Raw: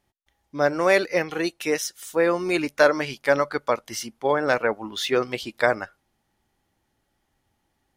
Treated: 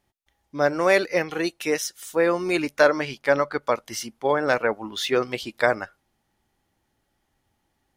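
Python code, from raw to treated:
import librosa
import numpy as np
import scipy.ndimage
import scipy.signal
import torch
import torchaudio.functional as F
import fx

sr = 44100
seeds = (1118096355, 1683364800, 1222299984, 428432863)

y = fx.high_shelf(x, sr, hz=fx.line((2.8, 10000.0), (3.62, 5200.0)), db=-8.0, at=(2.8, 3.62), fade=0.02)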